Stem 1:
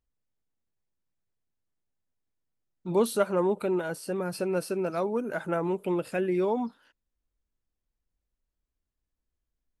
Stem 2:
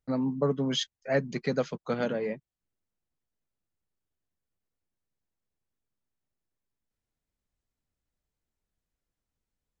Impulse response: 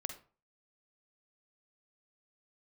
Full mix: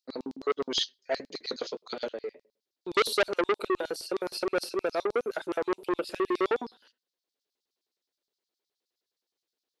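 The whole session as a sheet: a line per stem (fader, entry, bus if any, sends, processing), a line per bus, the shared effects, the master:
−2.0 dB, 0.00 s, send −14.5 dB, no processing
+0.5 dB, 0.00 s, send −17.5 dB, flanger 1.5 Hz, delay 6.1 ms, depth 7.2 ms, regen −53%; automatic ducking −23 dB, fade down 0.90 s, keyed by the first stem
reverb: on, RT60 0.40 s, pre-delay 43 ms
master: octave-band graphic EQ 125/4,000/8,000 Hz −4/+9/−4 dB; auto-filter high-pass square 9.6 Hz 400–4,700 Hz; saturating transformer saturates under 2,000 Hz

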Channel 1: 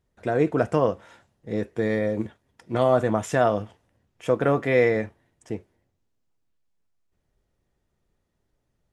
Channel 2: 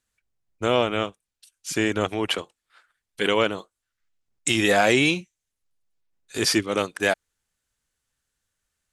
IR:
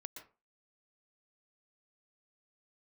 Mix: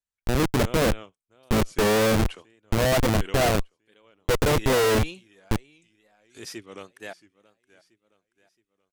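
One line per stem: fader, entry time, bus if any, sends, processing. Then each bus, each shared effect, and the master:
−0.5 dB, 0.00 s, no send, no echo send, automatic gain control gain up to 16 dB; comparator with hysteresis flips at −17 dBFS
−17.0 dB, 0.00 s, no send, echo send −20 dB, no processing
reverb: not used
echo: repeating echo 675 ms, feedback 44%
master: tape wow and flutter 89 cents

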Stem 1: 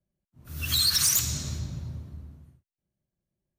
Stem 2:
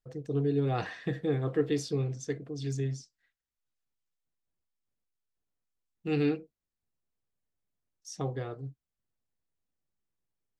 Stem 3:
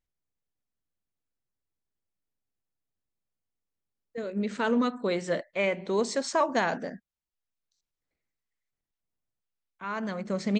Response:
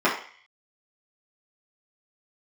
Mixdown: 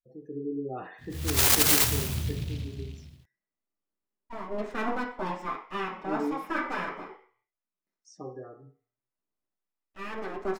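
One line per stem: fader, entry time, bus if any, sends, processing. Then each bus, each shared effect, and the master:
+2.5 dB, 0.65 s, no send, bit reduction 12 bits; short delay modulated by noise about 3,100 Hz, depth 0.18 ms
−11.5 dB, 0.00 s, send −14.5 dB, gate on every frequency bin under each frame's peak −20 dB strong
−6.0 dB, 0.15 s, send −13 dB, high-shelf EQ 2,400 Hz −7 dB; full-wave rectification; automatic ducking −11 dB, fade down 1.40 s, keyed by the second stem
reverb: on, RT60 0.45 s, pre-delay 3 ms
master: no processing

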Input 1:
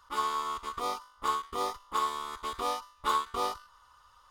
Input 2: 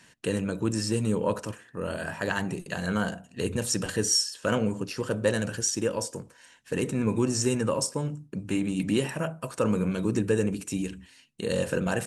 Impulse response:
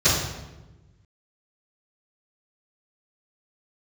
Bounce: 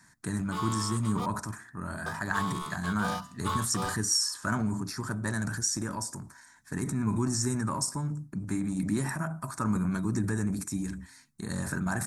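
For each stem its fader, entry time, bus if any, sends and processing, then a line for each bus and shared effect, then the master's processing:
−5.0 dB, 0.40 s, muted 0:01.26–0:02.06, no send, Butterworth high-pass 330 Hz 96 dB per octave
−0.5 dB, 0.00 s, no send, phaser with its sweep stopped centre 1,200 Hz, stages 4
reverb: not used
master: transient designer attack +2 dB, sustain +7 dB

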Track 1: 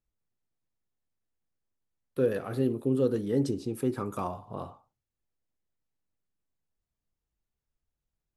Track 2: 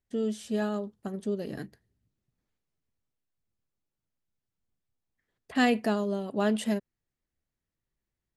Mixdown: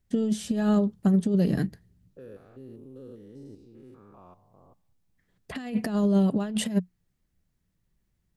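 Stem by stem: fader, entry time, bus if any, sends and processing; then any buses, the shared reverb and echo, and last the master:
−16.0 dB, 0.00 s, no send, spectrum averaged block by block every 200 ms; low-pass that shuts in the quiet parts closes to 400 Hz, open at −26.5 dBFS
+2.5 dB, 0.00 s, no send, bass and treble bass +8 dB, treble +1 dB; compressor whose output falls as the input rises −27 dBFS, ratio −0.5; parametric band 180 Hz +8.5 dB 0.21 octaves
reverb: not used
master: no processing

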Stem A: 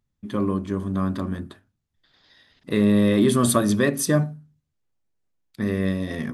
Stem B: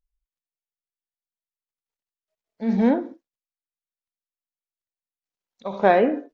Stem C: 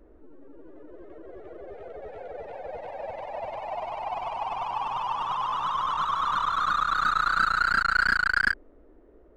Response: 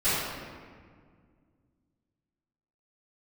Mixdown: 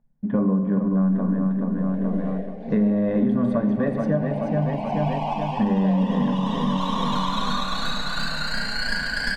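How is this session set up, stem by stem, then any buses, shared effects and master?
+3.0 dB, 0.00 s, send −22.5 dB, echo send −6.5 dB, adaptive Wiener filter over 9 samples; low-pass with resonance 1,400 Hz, resonance Q 7.7; low-shelf EQ 500 Hz +8.5 dB
−9.0 dB, 0.00 s, no send, no echo send, no processing
−0.5 dB, 0.80 s, send −6.5 dB, no echo send, reverb reduction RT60 1.8 s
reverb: on, RT60 1.9 s, pre-delay 3 ms
echo: repeating echo 430 ms, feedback 51%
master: automatic gain control; phaser with its sweep stopped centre 350 Hz, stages 6; downward compressor 4 to 1, threshold −18 dBFS, peak gain reduction 8 dB

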